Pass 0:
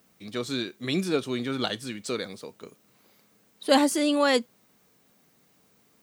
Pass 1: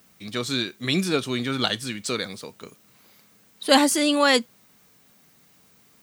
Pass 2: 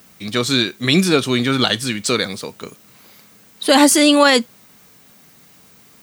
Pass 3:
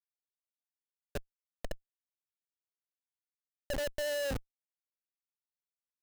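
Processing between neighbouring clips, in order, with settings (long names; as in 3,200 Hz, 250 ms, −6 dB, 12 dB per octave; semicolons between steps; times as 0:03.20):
parametric band 420 Hz −6 dB 2.2 octaves; level +7 dB
boost into a limiter +10 dB; level −1 dB
envelope filter 580–1,300 Hz, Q 15, down, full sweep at −12.5 dBFS; comparator with hysteresis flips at −24.5 dBFS; level −4.5 dB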